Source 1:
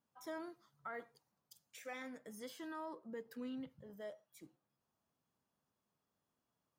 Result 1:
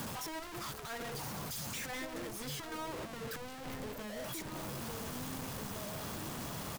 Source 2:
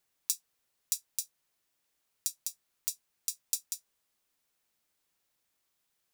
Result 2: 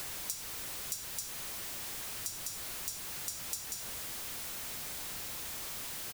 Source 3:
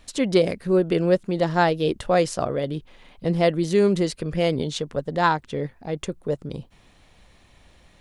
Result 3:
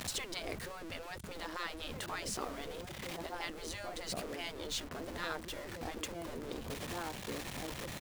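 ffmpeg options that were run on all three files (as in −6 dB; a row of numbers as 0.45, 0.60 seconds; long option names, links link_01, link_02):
-filter_complex "[0:a]aeval=exprs='val(0)+0.5*0.0316*sgn(val(0))':channel_layout=same,asplit=2[link_01][link_02];[link_02]adelay=1749,volume=-8dB,highshelf=frequency=4000:gain=-39.4[link_03];[link_01][link_03]amix=inputs=2:normalize=0,aeval=exprs='val(0)*gte(abs(val(0)),0.0112)':channel_layout=same,acrossover=split=160[link_04][link_05];[link_05]acompressor=threshold=-49dB:ratio=1.5[link_06];[link_04][link_06]amix=inputs=2:normalize=0,afftfilt=real='re*lt(hypot(re,im),0.0891)':imag='im*lt(hypot(re,im),0.0891)':win_size=1024:overlap=0.75"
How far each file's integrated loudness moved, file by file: +7.5, −1.5, −18.0 LU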